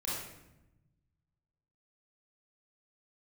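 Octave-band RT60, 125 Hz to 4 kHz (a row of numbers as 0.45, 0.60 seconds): 2.0, 1.5, 1.0, 0.85, 0.80, 0.65 seconds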